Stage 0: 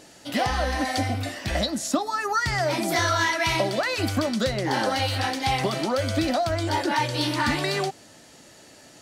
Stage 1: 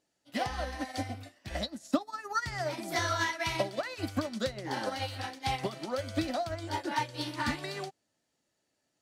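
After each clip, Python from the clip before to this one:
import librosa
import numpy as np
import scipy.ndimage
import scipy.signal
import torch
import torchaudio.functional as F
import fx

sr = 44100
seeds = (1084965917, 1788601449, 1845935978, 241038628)

y = fx.upward_expand(x, sr, threshold_db=-37.0, expansion=2.5)
y = y * librosa.db_to_amplitude(-2.5)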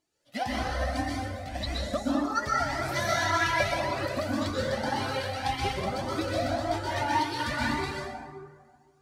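y = fx.rev_plate(x, sr, seeds[0], rt60_s=1.8, hf_ratio=0.45, predelay_ms=110, drr_db=-5.5)
y = fx.comb_cascade(y, sr, direction='rising', hz=1.8)
y = y * librosa.db_to_amplitude(3.0)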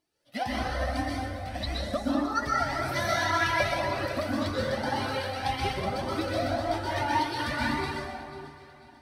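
y = fx.peak_eq(x, sr, hz=7000.0, db=-11.0, octaves=0.22)
y = fx.echo_alternate(y, sr, ms=247, hz=1700.0, feedback_pct=65, wet_db=-12.5)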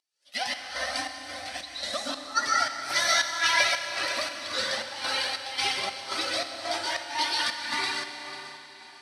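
y = fx.volume_shaper(x, sr, bpm=112, per_beat=1, depth_db=-16, release_ms=219.0, shape='slow start')
y = fx.weighting(y, sr, curve='ITU-R 468')
y = fx.rev_schroeder(y, sr, rt60_s=3.8, comb_ms=30, drr_db=8.0)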